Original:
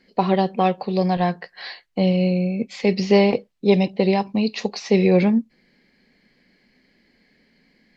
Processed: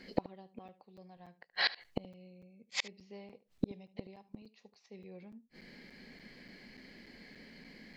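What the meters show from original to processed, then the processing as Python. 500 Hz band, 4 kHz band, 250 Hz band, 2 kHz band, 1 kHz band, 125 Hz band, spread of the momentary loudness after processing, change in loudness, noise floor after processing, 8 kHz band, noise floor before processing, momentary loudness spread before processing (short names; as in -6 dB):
-27.0 dB, -8.5 dB, -25.5 dB, -10.0 dB, -24.5 dB, -27.0 dB, 19 LU, -19.5 dB, -72 dBFS, n/a, -63 dBFS, 8 LU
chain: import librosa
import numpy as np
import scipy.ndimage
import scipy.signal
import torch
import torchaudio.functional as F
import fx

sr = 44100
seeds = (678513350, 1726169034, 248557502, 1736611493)

y = fx.gate_flip(x, sr, shuts_db=-23.0, range_db=-41)
y = y + 10.0 ** (-17.5 / 20.0) * np.pad(y, (int(74 * sr / 1000.0), 0))[:len(y)]
y = fx.buffer_crackle(y, sr, first_s=0.68, period_s=0.29, block=256, kind='zero')
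y = y * 10.0 ** (6.0 / 20.0)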